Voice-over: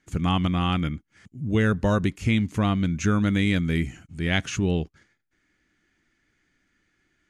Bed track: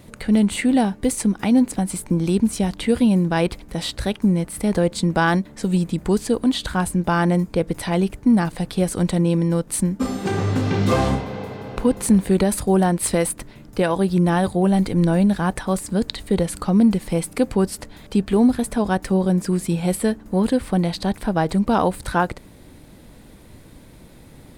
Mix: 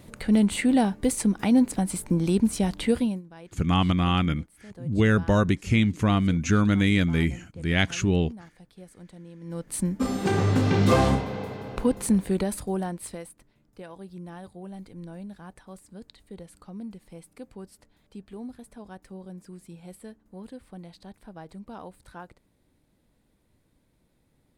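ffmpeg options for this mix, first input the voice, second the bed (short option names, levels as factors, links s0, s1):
-filter_complex "[0:a]adelay=3450,volume=1.12[s0];[1:a]volume=12.6,afade=t=out:st=2.89:d=0.33:silence=0.0707946,afade=t=in:st=9.4:d=0.83:silence=0.0530884,afade=t=out:st=10.94:d=2.36:silence=0.0794328[s1];[s0][s1]amix=inputs=2:normalize=0"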